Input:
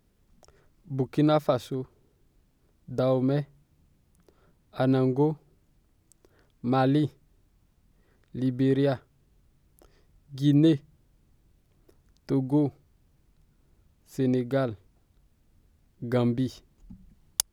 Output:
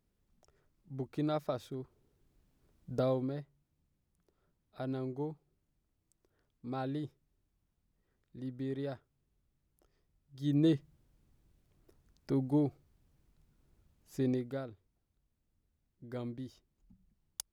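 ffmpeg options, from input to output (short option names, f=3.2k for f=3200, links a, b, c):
-af "volume=4.5dB,afade=t=in:st=1.55:d=1.35:silence=0.421697,afade=t=out:st=2.9:d=0.45:silence=0.298538,afade=t=in:st=10.35:d=0.4:silence=0.375837,afade=t=out:st=14.22:d=0.42:silence=0.316228"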